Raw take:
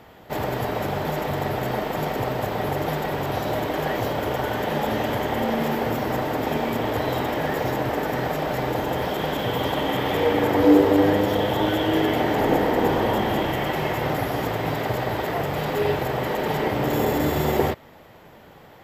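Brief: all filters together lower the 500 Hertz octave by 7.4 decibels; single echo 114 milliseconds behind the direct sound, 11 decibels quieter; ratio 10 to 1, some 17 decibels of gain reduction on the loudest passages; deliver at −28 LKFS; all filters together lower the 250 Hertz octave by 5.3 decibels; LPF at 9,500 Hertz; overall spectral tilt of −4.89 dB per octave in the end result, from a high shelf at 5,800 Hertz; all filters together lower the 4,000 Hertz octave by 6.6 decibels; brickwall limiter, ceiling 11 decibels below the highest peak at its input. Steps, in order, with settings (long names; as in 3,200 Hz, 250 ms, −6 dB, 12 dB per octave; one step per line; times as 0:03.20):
low-pass filter 9,500 Hz
parametric band 250 Hz −4 dB
parametric band 500 Hz −8 dB
parametric band 4,000 Hz −7.5 dB
high-shelf EQ 5,800 Hz −4.5 dB
downward compressor 10 to 1, threshold −34 dBFS
brickwall limiter −35.5 dBFS
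single-tap delay 114 ms −11 dB
level +15.5 dB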